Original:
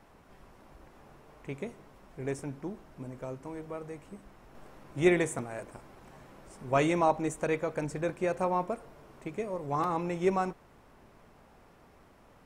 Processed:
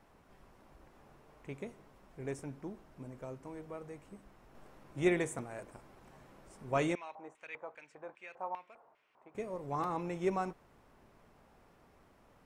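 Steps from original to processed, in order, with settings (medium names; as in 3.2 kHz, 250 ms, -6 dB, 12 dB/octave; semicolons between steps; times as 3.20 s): 6.95–9.35 s: LFO band-pass square 2.5 Hz 880–2500 Hz; trim -5.5 dB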